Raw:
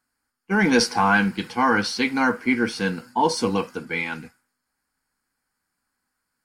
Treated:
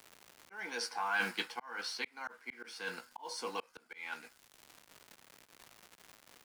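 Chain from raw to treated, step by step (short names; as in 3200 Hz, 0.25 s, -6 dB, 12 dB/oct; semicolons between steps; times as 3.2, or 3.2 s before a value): G.711 law mismatch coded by A; HPF 630 Hz 12 dB/oct; reverse; compressor 10:1, threshold -30 dBFS, peak gain reduction 14.5 dB; reverse; doubler 17 ms -11 dB; crackle 260/s -50 dBFS; auto swell 0.703 s; three-band squash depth 40%; gain +2.5 dB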